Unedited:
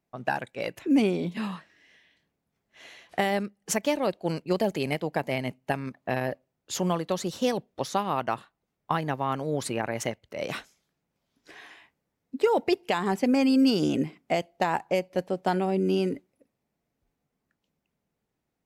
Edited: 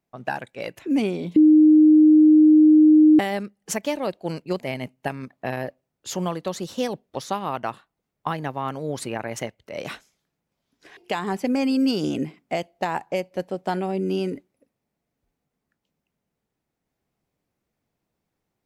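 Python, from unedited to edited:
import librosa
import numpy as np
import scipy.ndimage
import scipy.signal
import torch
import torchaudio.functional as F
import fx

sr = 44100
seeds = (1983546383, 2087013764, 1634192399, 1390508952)

y = fx.edit(x, sr, fx.bleep(start_s=1.36, length_s=1.83, hz=308.0, db=-9.5),
    fx.cut(start_s=4.6, length_s=0.64),
    fx.cut(start_s=11.61, length_s=1.15), tone=tone)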